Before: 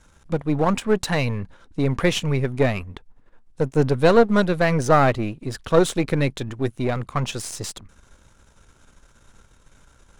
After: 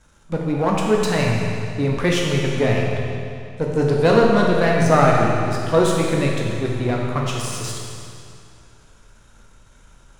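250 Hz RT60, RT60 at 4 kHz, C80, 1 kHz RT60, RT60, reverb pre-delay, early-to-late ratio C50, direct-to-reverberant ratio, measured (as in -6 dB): 2.5 s, 2.3 s, 1.5 dB, 2.5 s, 2.5 s, 12 ms, 0.0 dB, -2.5 dB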